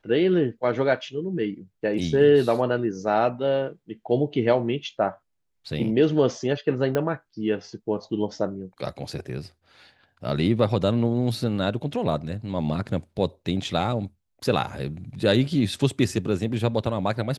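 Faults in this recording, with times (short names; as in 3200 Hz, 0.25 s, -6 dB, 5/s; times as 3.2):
6.95 pop -12 dBFS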